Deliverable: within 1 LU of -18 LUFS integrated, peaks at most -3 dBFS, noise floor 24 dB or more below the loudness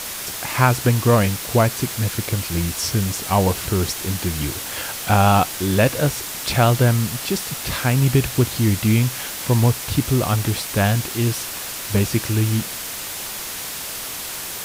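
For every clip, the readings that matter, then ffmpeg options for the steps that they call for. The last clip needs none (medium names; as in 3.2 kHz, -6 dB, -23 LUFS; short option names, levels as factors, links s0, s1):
noise floor -30 dBFS; noise floor target -45 dBFS; loudness -20.5 LUFS; peak level -2.0 dBFS; loudness target -18.0 LUFS
-> -af "afftdn=nr=15:nf=-30"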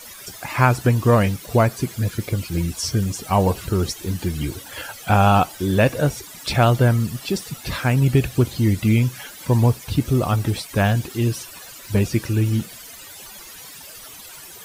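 noise floor -40 dBFS; noise floor target -45 dBFS
-> -af "afftdn=nr=6:nf=-40"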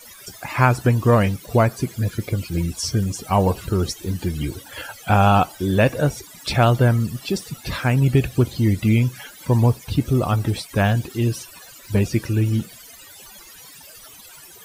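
noise floor -44 dBFS; noise floor target -45 dBFS
-> -af "afftdn=nr=6:nf=-44"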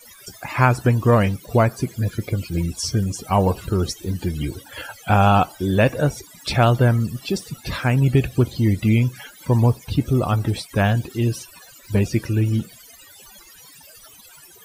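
noise floor -47 dBFS; loudness -20.5 LUFS; peak level -2.5 dBFS; loudness target -18.0 LUFS
-> -af "volume=1.33,alimiter=limit=0.708:level=0:latency=1"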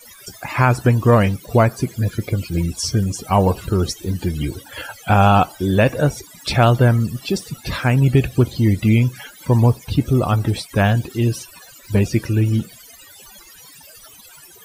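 loudness -18.5 LUFS; peak level -3.0 dBFS; noise floor -44 dBFS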